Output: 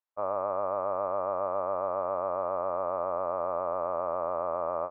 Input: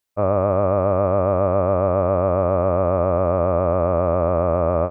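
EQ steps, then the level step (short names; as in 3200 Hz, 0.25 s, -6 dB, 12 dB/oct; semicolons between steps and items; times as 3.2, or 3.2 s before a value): band-pass 980 Hz, Q 1.9; -5.0 dB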